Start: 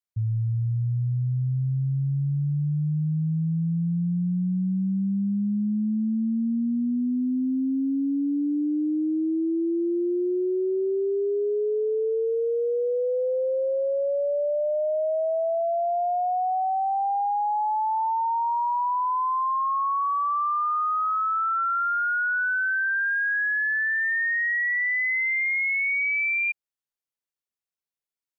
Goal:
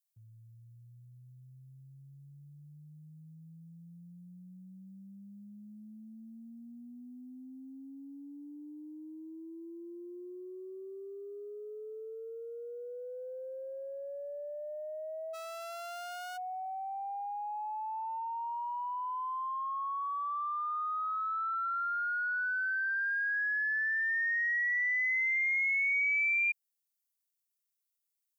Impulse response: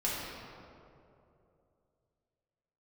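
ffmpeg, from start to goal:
-filter_complex "[0:a]acontrast=29,asplit=3[link_01][link_02][link_03];[link_01]afade=type=out:start_time=15.33:duration=0.02[link_04];[link_02]aeval=exprs='clip(val(0),-1,0.0158)':channel_layout=same,afade=type=in:start_time=15.33:duration=0.02,afade=type=out:start_time=16.36:duration=0.02[link_05];[link_03]afade=type=in:start_time=16.36:duration=0.02[link_06];[link_04][link_05][link_06]amix=inputs=3:normalize=0,aderivative"

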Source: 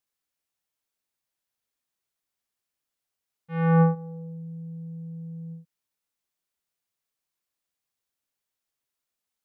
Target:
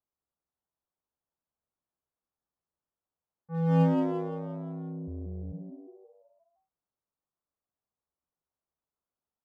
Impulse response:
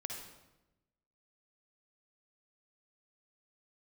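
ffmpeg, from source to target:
-filter_complex "[0:a]lowpass=frequency=1200:width=0.5412,lowpass=frequency=1200:width=1.3066,equalizer=frequency=64:width_type=o:width=0.44:gain=9.5,acrossover=split=350|920[link_01][link_02][link_03];[link_03]asoftclip=type=tanh:threshold=-38.5dB[link_04];[link_01][link_02][link_04]amix=inputs=3:normalize=0,asplit=3[link_05][link_06][link_07];[link_05]afade=type=out:start_time=5.07:duration=0.02[link_08];[link_06]afreqshift=-82,afade=type=in:start_time=5.07:duration=0.02,afade=type=out:start_time=5.51:duration=0.02[link_09];[link_07]afade=type=in:start_time=5.51:duration=0.02[link_10];[link_08][link_09][link_10]amix=inputs=3:normalize=0,asplit=2[link_11][link_12];[link_12]aeval=exprs='0.0473*(abs(mod(val(0)/0.0473+3,4)-2)-1)':channel_layout=same,volume=-9dB[link_13];[link_11][link_13]amix=inputs=2:normalize=0,asplit=7[link_14][link_15][link_16][link_17][link_18][link_19][link_20];[link_15]adelay=173,afreqshift=100,volume=-5dB[link_21];[link_16]adelay=346,afreqshift=200,volume=-11.2dB[link_22];[link_17]adelay=519,afreqshift=300,volume=-17.4dB[link_23];[link_18]adelay=692,afreqshift=400,volume=-23.6dB[link_24];[link_19]adelay=865,afreqshift=500,volume=-29.8dB[link_25];[link_20]adelay=1038,afreqshift=600,volume=-36dB[link_26];[link_14][link_21][link_22][link_23][link_24][link_25][link_26]amix=inputs=7:normalize=0,volume=-4.5dB"

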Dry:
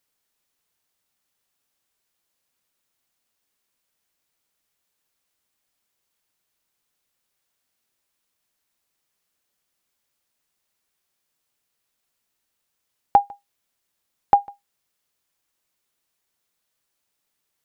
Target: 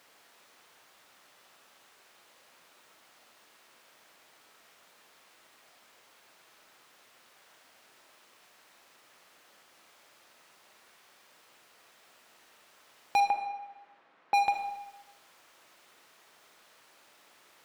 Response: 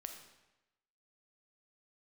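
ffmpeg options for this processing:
-filter_complex "[0:a]acompressor=threshold=-23dB:ratio=6,asplit=2[link_01][link_02];[link_02]highpass=frequency=720:poles=1,volume=37dB,asoftclip=type=tanh:threshold=-5dB[link_03];[link_01][link_03]amix=inputs=2:normalize=0,lowpass=frequency=1300:poles=1,volume=-6dB,asoftclip=type=hard:threshold=-17.5dB,asettb=1/sr,asplit=3[link_04][link_05][link_06];[link_04]atrim=end=13.204[link_07];[link_05]atrim=start=13.2:end=14.34,asetpts=PTS-STARTPTS,afade=type=in:duration=0.004:curve=qsin,afade=type=out:start_time=1.136:duration=0.004:curve=qsin,highpass=160,lowpass=2000[link_08];[link_06]atrim=start=14.336[link_09];[link_07][link_08]acrossfade=duration=0.004:curve1=hsin:curve2=qsin[link_10];[link_10][link_09]acrossfade=duration=0.004:curve1=qsin:curve2=hsin[link_11];[1:a]atrim=start_sample=2205[link_12];[link_11][link_12]afir=irnorm=-1:irlink=0,volume=1dB"

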